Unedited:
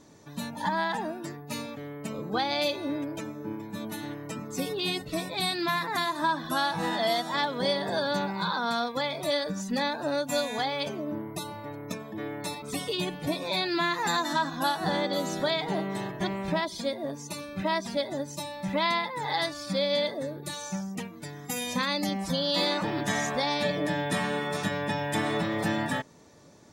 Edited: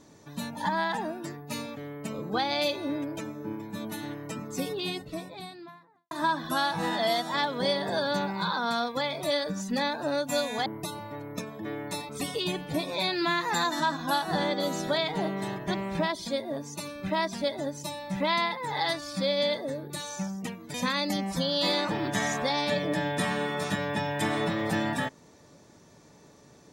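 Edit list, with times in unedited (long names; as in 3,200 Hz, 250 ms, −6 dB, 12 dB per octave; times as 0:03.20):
0:04.42–0:06.11: fade out and dull
0:10.66–0:11.19: remove
0:21.27–0:21.67: remove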